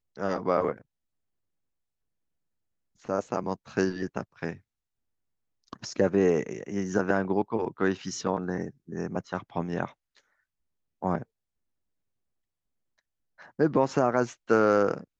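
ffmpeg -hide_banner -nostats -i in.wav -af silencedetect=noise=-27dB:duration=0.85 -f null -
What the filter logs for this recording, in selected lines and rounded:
silence_start: 0.72
silence_end: 3.09 | silence_duration: 2.37
silence_start: 4.50
silence_end: 5.73 | silence_duration: 1.23
silence_start: 9.85
silence_end: 11.03 | silence_duration: 1.18
silence_start: 11.18
silence_end: 13.60 | silence_duration: 2.42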